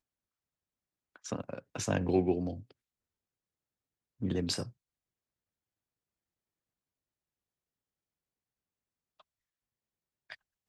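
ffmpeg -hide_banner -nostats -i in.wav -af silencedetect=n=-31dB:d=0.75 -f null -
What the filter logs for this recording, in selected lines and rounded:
silence_start: 0.00
silence_end: 1.32 | silence_duration: 1.32
silence_start: 2.51
silence_end: 4.23 | silence_duration: 1.72
silence_start: 4.63
silence_end: 10.32 | silence_duration: 5.69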